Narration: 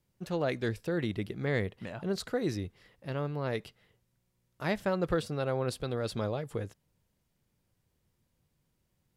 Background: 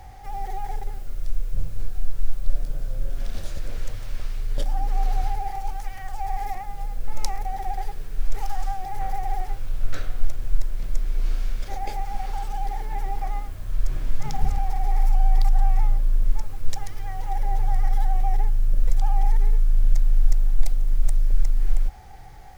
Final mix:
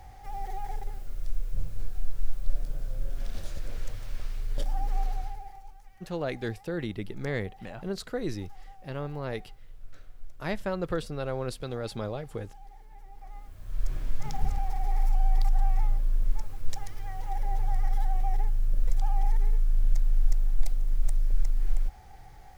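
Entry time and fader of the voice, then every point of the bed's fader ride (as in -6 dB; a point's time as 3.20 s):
5.80 s, -1.0 dB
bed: 4.97 s -5 dB
5.80 s -21.5 dB
13.10 s -21.5 dB
13.84 s -5.5 dB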